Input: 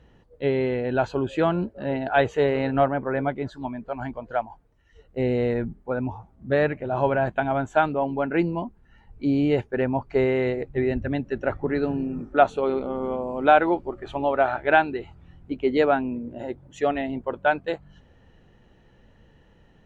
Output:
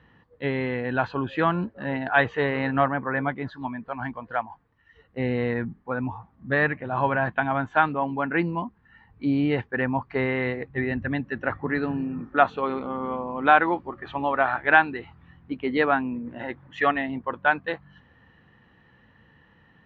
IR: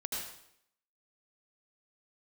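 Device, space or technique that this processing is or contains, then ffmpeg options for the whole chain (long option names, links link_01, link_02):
guitar cabinet: -filter_complex "[0:a]highpass=88,equalizer=frequency=390:width_type=q:width=4:gain=-7,equalizer=frequency=610:width_type=q:width=4:gain=-7,equalizer=frequency=1100:width_type=q:width=4:gain=8,equalizer=frequency=1800:width_type=q:width=4:gain=8,lowpass=frequency=4400:width=0.5412,lowpass=frequency=4400:width=1.3066,asplit=3[link_01][link_02][link_03];[link_01]afade=type=out:start_time=16.25:duration=0.02[link_04];[link_02]equalizer=frequency=1800:width_type=o:width=2.2:gain=7,afade=type=in:start_time=16.25:duration=0.02,afade=type=out:start_time=16.9:duration=0.02[link_05];[link_03]afade=type=in:start_time=16.9:duration=0.02[link_06];[link_04][link_05][link_06]amix=inputs=3:normalize=0"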